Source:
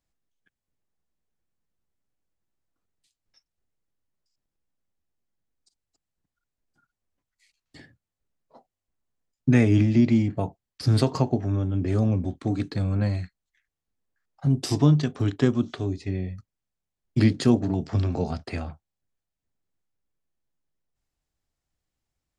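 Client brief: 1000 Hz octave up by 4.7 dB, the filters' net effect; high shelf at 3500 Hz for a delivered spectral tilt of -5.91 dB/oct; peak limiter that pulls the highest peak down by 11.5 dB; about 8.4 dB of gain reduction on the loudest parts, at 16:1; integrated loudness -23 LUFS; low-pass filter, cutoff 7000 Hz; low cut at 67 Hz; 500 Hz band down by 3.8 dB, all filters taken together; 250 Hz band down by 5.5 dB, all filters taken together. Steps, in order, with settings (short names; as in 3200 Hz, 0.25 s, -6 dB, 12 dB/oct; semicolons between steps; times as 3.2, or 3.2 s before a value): HPF 67 Hz; LPF 7000 Hz; bell 250 Hz -6 dB; bell 500 Hz -4.5 dB; bell 1000 Hz +7.5 dB; high shelf 3500 Hz +6 dB; compressor 16:1, threshold -25 dBFS; gain +13 dB; limiter -13 dBFS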